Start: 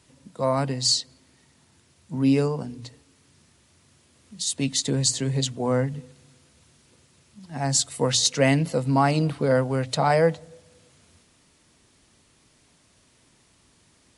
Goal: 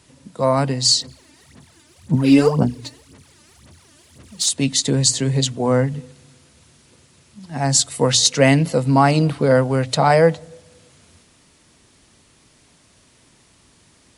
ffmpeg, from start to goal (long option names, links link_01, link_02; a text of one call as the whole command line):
ffmpeg -i in.wav -filter_complex "[0:a]asplit=3[link_01][link_02][link_03];[link_01]afade=type=out:start_time=1:duration=0.02[link_04];[link_02]aphaser=in_gain=1:out_gain=1:delay=3.4:decay=0.75:speed=1.9:type=sinusoidal,afade=type=in:start_time=1:duration=0.02,afade=type=out:start_time=4.48:duration=0.02[link_05];[link_03]afade=type=in:start_time=4.48:duration=0.02[link_06];[link_04][link_05][link_06]amix=inputs=3:normalize=0,volume=6dB" out.wav